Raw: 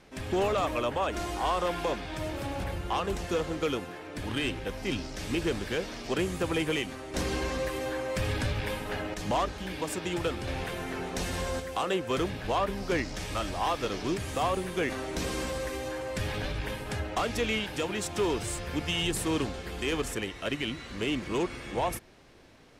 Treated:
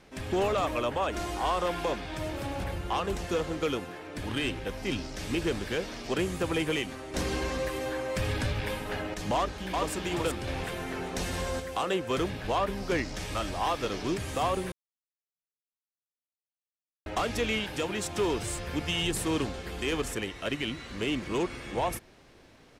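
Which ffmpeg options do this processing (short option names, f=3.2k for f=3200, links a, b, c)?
-filter_complex "[0:a]asplit=2[a][b];[b]afade=t=in:st=9.35:d=0.01,afade=t=out:st=9.93:d=0.01,aecho=0:1:380|760|1140|1520:0.749894|0.187474|0.0468684|0.0117171[c];[a][c]amix=inputs=2:normalize=0,asplit=3[d][e][f];[d]atrim=end=14.72,asetpts=PTS-STARTPTS,afade=t=out:st=14.716:d=0.004:c=hsin[g];[e]atrim=start=14.72:end=17.06,asetpts=PTS-STARTPTS,volume=0[h];[f]atrim=start=17.06,asetpts=PTS-STARTPTS,afade=t=in:d=0.004:c=hsin[i];[g][h][i]concat=n=3:v=0:a=1"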